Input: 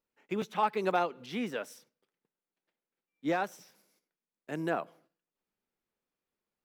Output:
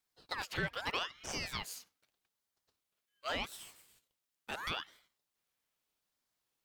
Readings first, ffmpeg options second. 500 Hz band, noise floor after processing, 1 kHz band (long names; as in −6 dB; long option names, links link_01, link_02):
−12.0 dB, below −85 dBFS, −10.0 dB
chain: -filter_complex "[0:a]tiltshelf=frequency=660:gain=-9,acrossover=split=150[link_01][link_02];[link_02]acompressor=threshold=-36dB:ratio=2.5[link_03];[link_01][link_03]amix=inputs=2:normalize=0,aeval=exprs='val(0)*sin(2*PI*1700*n/s+1700*0.6/0.8*sin(2*PI*0.8*n/s))':channel_layout=same,volume=1.5dB"